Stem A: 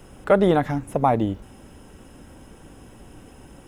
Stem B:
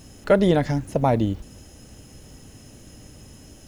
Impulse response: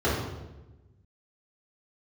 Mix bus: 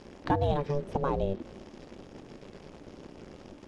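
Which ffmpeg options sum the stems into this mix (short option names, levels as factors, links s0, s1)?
-filter_complex "[0:a]volume=0.299,asplit=2[s0][s1];[1:a]acrusher=bits=8:dc=4:mix=0:aa=0.000001,adynamicsmooth=sensitivity=6.5:basefreq=3100,volume=1.06[s2];[s1]apad=whole_len=161906[s3];[s2][s3]sidechaincompress=threshold=0.0178:ratio=8:attack=10:release=336[s4];[s0][s4]amix=inputs=2:normalize=0,lowpass=6700,aeval=exprs='val(0)*sin(2*PI*290*n/s)':c=same"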